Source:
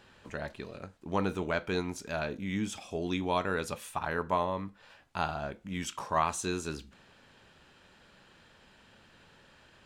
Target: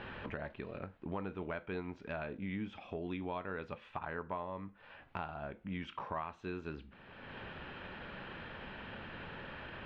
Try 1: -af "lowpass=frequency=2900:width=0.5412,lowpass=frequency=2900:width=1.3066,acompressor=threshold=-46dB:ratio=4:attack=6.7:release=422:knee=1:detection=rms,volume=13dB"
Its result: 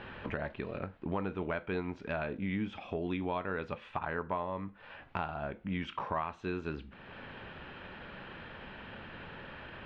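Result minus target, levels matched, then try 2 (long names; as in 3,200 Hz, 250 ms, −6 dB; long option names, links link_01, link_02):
downward compressor: peak gain reduction −5.5 dB
-af "lowpass=frequency=2900:width=0.5412,lowpass=frequency=2900:width=1.3066,acompressor=threshold=-53dB:ratio=4:attack=6.7:release=422:knee=1:detection=rms,volume=13dB"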